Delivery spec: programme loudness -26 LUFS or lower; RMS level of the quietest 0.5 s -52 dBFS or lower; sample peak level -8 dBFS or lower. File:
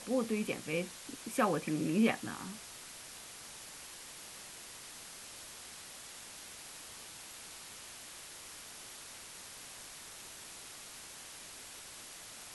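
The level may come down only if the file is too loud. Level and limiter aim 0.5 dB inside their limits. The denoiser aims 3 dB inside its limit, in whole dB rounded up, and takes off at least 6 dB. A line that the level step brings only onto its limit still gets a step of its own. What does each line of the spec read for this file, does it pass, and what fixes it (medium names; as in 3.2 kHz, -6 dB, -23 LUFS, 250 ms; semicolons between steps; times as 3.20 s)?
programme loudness -40.5 LUFS: pass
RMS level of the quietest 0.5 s -50 dBFS: fail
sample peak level -17.0 dBFS: pass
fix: noise reduction 6 dB, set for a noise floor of -50 dBFS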